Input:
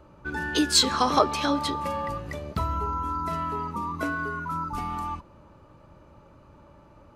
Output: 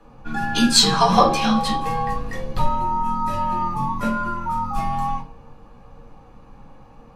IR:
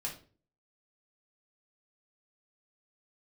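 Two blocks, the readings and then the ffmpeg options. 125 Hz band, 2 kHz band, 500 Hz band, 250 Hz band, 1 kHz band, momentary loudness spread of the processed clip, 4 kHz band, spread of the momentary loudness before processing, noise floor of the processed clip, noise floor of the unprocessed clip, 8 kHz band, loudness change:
+6.5 dB, +2.5 dB, +4.5 dB, +7.0 dB, +7.0 dB, 13 LU, +5.5 dB, 13 LU, -47 dBFS, -54 dBFS, +4.5 dB, +6.0 dB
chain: -filter_complex "[0:a]afreqshift=-66[a];[1:a]atrim=start_sample=2205[b];[a][b]afir=irnorm=-1:irlink=0,volume=5dB"

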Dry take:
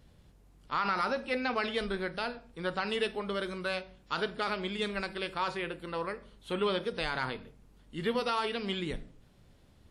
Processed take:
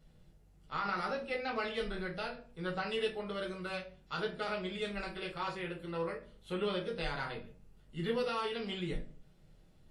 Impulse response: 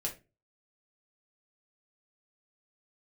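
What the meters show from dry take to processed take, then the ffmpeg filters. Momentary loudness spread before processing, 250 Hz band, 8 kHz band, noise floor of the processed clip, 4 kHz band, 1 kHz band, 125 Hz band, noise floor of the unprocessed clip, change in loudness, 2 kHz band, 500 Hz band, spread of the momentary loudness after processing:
7 LU, -3.5 dB, -5.5 dB, -62 dBFS, -5.0 dB, -5.5 dB, -1.0 dB, -61 dBFS, -4.0 dB, -5.0 dB, -3.0 dB, 7 LU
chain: -filter_complex "[1:a]atrim=start_sample=2205[a];[0:a][a]afir=irnorm=-1:irlink=0,volume=-6.5dB"

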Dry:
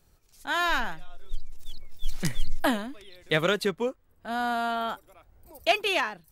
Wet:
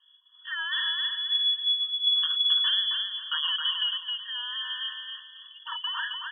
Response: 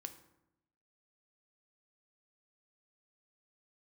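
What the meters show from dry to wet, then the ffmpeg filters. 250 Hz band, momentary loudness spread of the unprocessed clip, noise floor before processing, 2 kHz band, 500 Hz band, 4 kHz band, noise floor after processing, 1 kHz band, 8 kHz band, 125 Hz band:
under -40 dB, 19 LU, -63 dBFS, -3.5 dB, under -40 dB, +12.5 dB, -57 dBFS, -11.0 dB, under -35 dB, under -40 dB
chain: -filter_complex "[0:a]volume=26dB,asoftclip=hard,volume=-26dB,asplit=2[a][b];[b]aecho=0:1:268|536|804|1072:0.631|0.202|0.0646|0.0207[c];[a][c]amix=inputs=2:normalize=0,lowpass=f=2.9k:t=q:w=0.5098,lowpass=f=2.9k:t=q:w=0.6013,lowpass=f=2.9k:t=q:w=0.9,lowpass=f=2.9k:t=q:w=2.563,afreqshift=-3400,afftfilt=real='re*eq(mod(floor(b*sr/1024/940),2),1)':imag='im*eq(mod(floor(b*sr/1024/940),2),1)':win_size=1024:overlap=0.75,volume=2dB"

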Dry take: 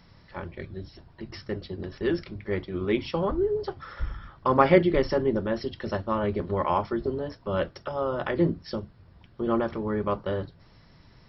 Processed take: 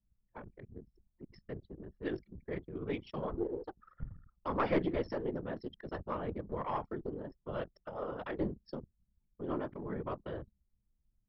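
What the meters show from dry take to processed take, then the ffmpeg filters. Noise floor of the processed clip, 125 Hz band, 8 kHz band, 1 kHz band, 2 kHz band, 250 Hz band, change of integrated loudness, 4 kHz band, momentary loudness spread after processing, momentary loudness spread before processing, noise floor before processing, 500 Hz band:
-79 dBFS, -11.5 dB, n/a, -12.0 dB, -12.0 dB, -11.0 dB, -12.0 dB, -14.5 dB, 16 LU, 15 LU, -56 dBFS, -12.5 dB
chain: -af "afftfilt=real='hypot(re,im)*cos(2*PI*random(0))':imag='hypot(re,im)*sin(2*PI*random(1))':win_size=512:overlap=0.75,aeval=exprs='0.299*(cos(1*acos(clip(val(0)/0.299,-1,1)))-cos(1*PI/2))+0.0335*(cos(4*acos(clip(val(0)/0.299,-1,1)))-cos(4*PI/2))+0.0168*(cos(5*acos(clip(val(0)/0.299,-1,1)))-cos(5*PI/2))':c=same,anlmdn=0.631,volume=-7.5dB"

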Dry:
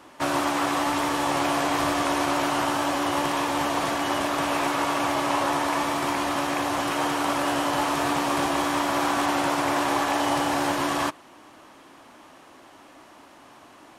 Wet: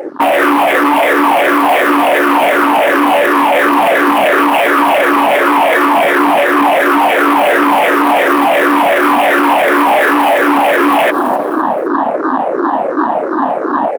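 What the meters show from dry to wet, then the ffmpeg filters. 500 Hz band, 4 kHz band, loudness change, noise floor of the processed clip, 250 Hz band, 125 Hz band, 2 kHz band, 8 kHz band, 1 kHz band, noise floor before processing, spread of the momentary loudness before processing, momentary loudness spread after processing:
+17.5 dB, +9.0 dB, +14.5 dB, -17 dBFS, +14.5 dB, n/a, +17.0 dB, +3.0 dB, +15.0 dB, -50 dBFS, 2 LU, 5 LU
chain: -filter_complex "[0:a]afftfilt=real='re*pow(10,21/40*sin(2*PI*(0.51*log(max(b,1)*sr/1024/100)/log(2)-(-2.8)*(pts-256)/sr)))':imag='im*pow(10,21/40*sin(2*PI*(0.51*log(max(b,1)*sr/1024/100)/log(2)-(-2.8)*(pts-256)/sr)))':win_size=1024:overlap=0.75,adynamicsmooth=sensitivity=4.5:basefreq=1.5k,asoftclip=type=tanh:threshold=-23.5dB,asplit=2[a][b];[b]aecho=0:1:259|518|777:0.075|0.0307|0.0126[c];[a][c]amix=inputs=2:normalize=0,aexciter=amount=9:drive=2.2:freq=9.4k,areverse,acompressor=threshold=-42dB:ratio=4,areverse,highpass=f=240:w=0.5412,highpass=f=240:w=1.3066,asoftclip=type=hard:threshold=-30.5dB,afwtdn=0.00447,alimiter=level_in=35.5dB:limit=-1dB:release=50:level=0:latency=1,volume=-1dB"

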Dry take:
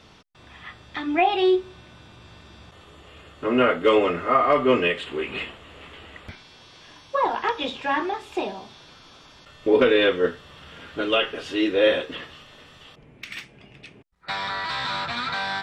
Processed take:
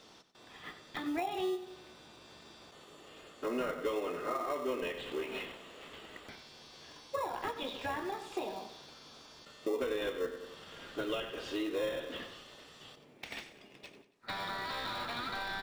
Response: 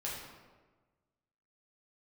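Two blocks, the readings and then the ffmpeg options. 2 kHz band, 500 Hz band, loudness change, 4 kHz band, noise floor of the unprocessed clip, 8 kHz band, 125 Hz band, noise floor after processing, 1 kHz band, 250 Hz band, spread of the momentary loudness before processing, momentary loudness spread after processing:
-14.0 dB, -14.5 dB, -15.5 dB, -13.0 dB, -51 dBFS, n/a, -13.5 dB, -58 dBFS, -14.5 dB, -14.0 dB, 22 LU, 19 LU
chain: -filter_complex "[0:a]highpass=280,acrossover=split=4000[a][b];[b]acompressor=threshold=-51dB:ratio=4:attack=1:release=60[c];[a][c]amix=inputs=2:normalize=0,equalizer=f=7k:w=0.39:g=6,asplit=2[d][e];[e]aecho=0:1:93|186|279|372:0.237|0.0949|0.0379|0.0152[f];[d][f]amix=inputs=2:normalize=0,acompressor=threshold=-28dB:ratio=4,asplit=2[g][h];[h]acrusher=samples=28:mix=1:aa=0.000001,volume=-10dB[i];[g][i]amix=inputs=2:normalize=0,equalizer=f=2.4k:w=1.3:g=-5,volume=-6.5dB"

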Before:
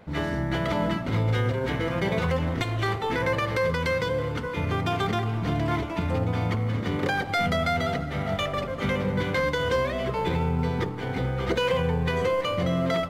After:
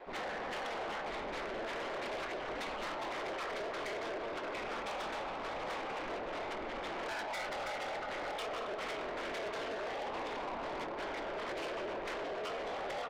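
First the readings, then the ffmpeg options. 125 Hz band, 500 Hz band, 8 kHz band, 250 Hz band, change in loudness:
-32.5 dB, -12.0 dB, -8.0 dB, -18.5 dB, -13.0 dB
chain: -filter_complex "[0:a]asoftclip=type=hard:threshold=-26dB,lowpass=4k,lowshelf=f=320:t=q:w=1.5:g=-14,acompressor=threshold=-29dB:ratio=12,afftfilt=real='hypot(re,im)*cos(2*PI*random(0))':imag='hypot(re,im)*sin(2*PI*random(1))':win_size=512:overlap=0.75,aeval=exprs='0.0473*(cos(1*acos(clip(val(0)/0.0473,-1,1)))-cos(1*PI/2))+0.00944*(cos(2*acos(clip(val(0)/0.0473,-1,1)))-cos(2*PI/2))+0.00168*(cos(3*acos(clip(val(0)/0.0473,-1,1)))-cos(3*PI/2))+0.000376*(cos(4*acos(clip(val(0)/0.0473,-1,1)))-cos(4*PI/2))+0.0211*(cos(5*acos(clip(val(0)/0.0473,-1,1)))-cos(5*PI/2))':c=same,asplit=2[a][b];[b]adelay=273,lowpass=f=2.3k:p=1,volume=-9.5dB,asplit=2[c][d];[d]adelay=273,lowpass=f=2.3k:p=1,volume=0.26,asplit=2[e][f];[f]adelay=273,lowpass=f=2.3k:p=1,volume=0.26[g];[a][c][e][g]amix=inputs=4:normalize=0,aeval=exprs='val(0)*sin(2*PI*110*n/s)':c=same,equalizer=f=100:t=o:w=1.8:g=-12.5,asplit=2[h][i];[i]adelay=24,volume=-12dB[j];[h][j]amix=inputs=2:normalize=0,asoftclip=type=tanh:threshold=-34.5dB"

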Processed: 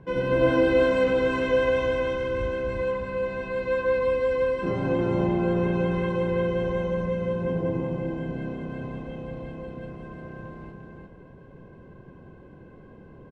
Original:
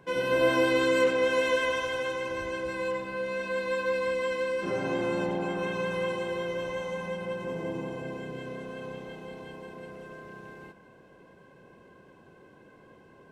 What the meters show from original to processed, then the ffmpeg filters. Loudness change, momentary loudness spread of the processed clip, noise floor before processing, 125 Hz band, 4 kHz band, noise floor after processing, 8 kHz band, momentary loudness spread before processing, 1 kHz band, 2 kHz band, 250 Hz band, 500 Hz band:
+4.0 dB, 17 LU, -56 dBFS, +11.5 dB, -4.0 dB, -48 dBFS, n/a, 20 LU, +1.0 dB, -1.0 dB, +6.5 dB, +4.5 dB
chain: -filter_complex "[0:a]aemphasis=mode=reproduction:type=riaa,asplit=2[a][b];[b]aecho=0:1:350:0.631[c];[a][c]amix=inputs=2:normalize=0"

